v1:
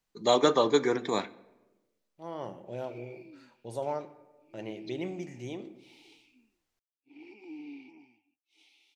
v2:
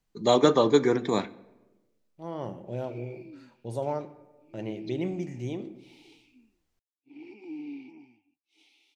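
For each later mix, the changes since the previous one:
master: add low shelf 310 Hz +10 dB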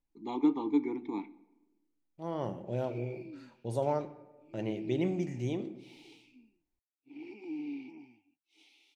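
first voice: add vowel filter u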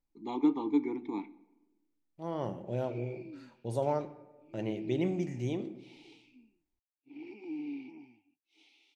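background: add air absorption 52 m

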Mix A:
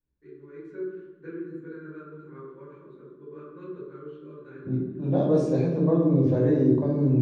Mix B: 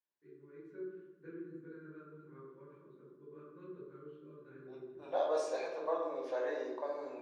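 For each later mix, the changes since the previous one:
first voice -10.5 dB; second voice: add HPF 660 Hz 24 dB/oct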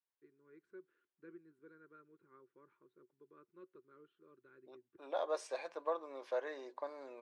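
reverb: off

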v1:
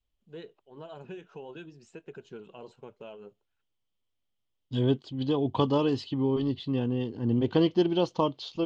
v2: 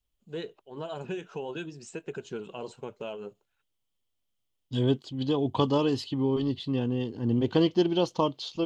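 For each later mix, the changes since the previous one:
first voice +7.0 dB; master: remove air absorption 95 m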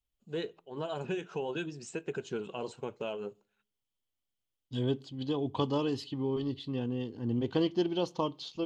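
second voice -6.5 dB; reverb: on, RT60 0.45 s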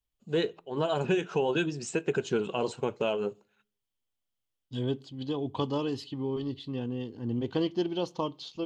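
first voice +8.0 dB

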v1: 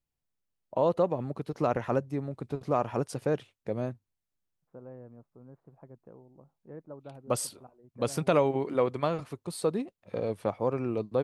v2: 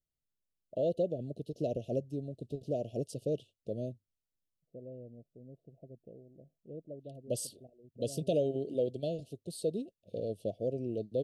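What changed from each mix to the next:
first voice -4.5 dB; master: add Chebyshev band-stop 670–2800 Hz, order 5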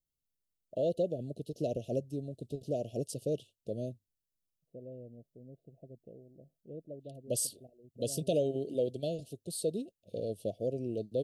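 master: add high shelf 5600 Hz +10 dB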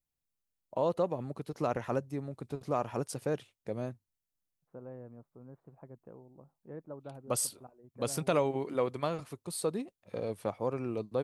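master: remove Chebyshev band-stop 670–2800 Hz, order 5

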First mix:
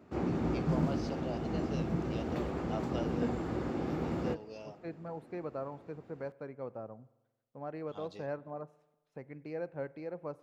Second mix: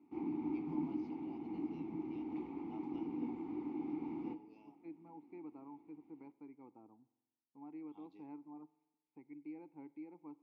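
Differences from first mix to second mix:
background: send +9.0 dB; master: add vowel filter u

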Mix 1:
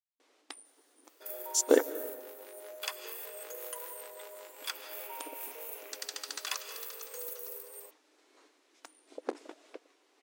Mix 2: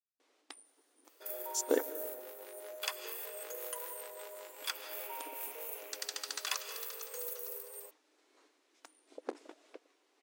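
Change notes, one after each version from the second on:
speech -7.0 dB; first sound -4.5 dB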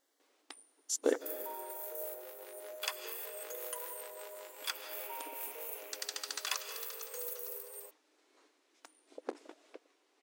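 speech: entry -0.65 s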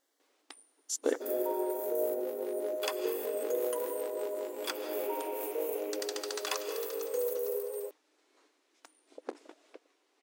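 second sound: remove HPF 1200 Hz 12 dB/oct

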